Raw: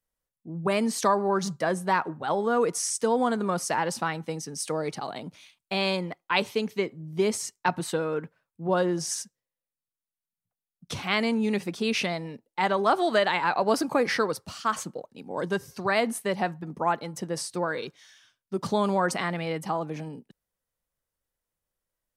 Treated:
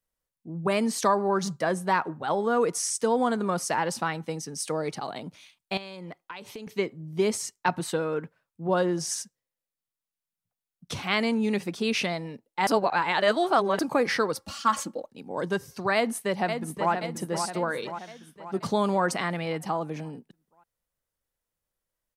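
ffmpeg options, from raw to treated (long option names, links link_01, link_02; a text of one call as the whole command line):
ffmpeg -i in.wav -filter_complex "[0:a]asettb=1/sr,asplit=3[link_01][link_02][link_03];[link_01]atrim=end=5.774[link_04];[link_02]atrim=start=5.77:end=6.67,asetpts=PTS-STARTPTS,afade=type=in:duration=0.004:curve=qsin,afade=type=out:start_time=0.896:duration=0.004:curve=qsin,acompressor=threshold=-35dB:ratio=16:attack=3.2:release=140:knee=1:detection=peak[link_05];[link_03]atrim=start=6.666[link_06];[link_04][link_05]acrossfade=duration=0.004:curve1=hsin:curve2=qsin[link_07];[link_07][link_06]acrossfade=duration=0.004:curve1=qsin:curve2=hsin,asettb=1/sr,asplit=3[link_08][link_09][link_10];[link_08]atrim=end=14.354[link_11];[link_09]atrim=start=14.35:end=15.1,asetpts=PTS-STARTPTS,afade=type=in:duration=0.004:curve=qsin,afade=type=out:start_time=0.746:duration=0.004:curve=qsin,aecho=1:1:3.6:0.85,atrim=end_sample=33075[link_12];[link_10]atrim=start=15.096[link_13];[link_11][link_12]acrossfade=duration=0.004:curve1=hsin:curve2=qsin[link_14];[link_14][link_13]acrossfade=duration=0.004:curve1=qsin:curve2=hsin,asplit=2[link_15][link_16];[link_16]afade=type=in:start_time=15.95:duration=0.01,afade=type=out:start_time=16.92:duration=0.01,aecho=0:1:530|1060|1590|2120|2650|3180|3710:0.473151|0.260233|0.143128|0.0787205|0.0432963|0.023813|0.0130971[link_17];[link_15][link_17]amix=inputs=2:normalize=0,asplit=3[link_18][link_19][link_20];[link_18]atrim=end=12.672[link_21];[link_19]atrim=start=12.668:end=13.792,asetpts=PTS-STARTPTS,areverse[link_22];[link_20]atrim=start=13.788[link_23];[link_21][link_22]acrossfade=duration=0.004:curve1=hsin:curve2=hsin[link_24];[link_24][link_23]acrossfade=duration=0.004:curve1=hsin:curve2=hsin" out.wav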